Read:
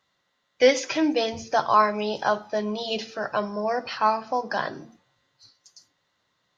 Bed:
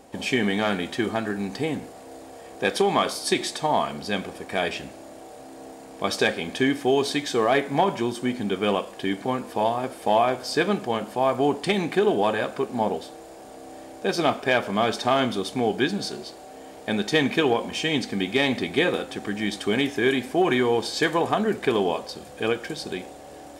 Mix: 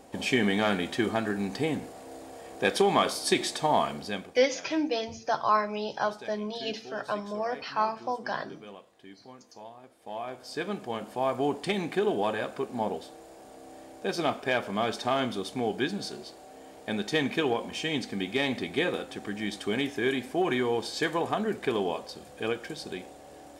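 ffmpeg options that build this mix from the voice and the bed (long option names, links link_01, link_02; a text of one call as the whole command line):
ffmpeg -i stem1.wav -i stem2.wav -filter_complex "[0:a]adelay=3750,volume=-5.5dB[link_01];[1:a]volume=15dB,afade=type=out:start_time=3.87:duration=0.54:silence=0.0891251,afade=type=in:start_time=9.97:duration=1.28:silence=0.141254[link_02];[link_01][link_02]amix=inputs=2:normalize=0" out.wav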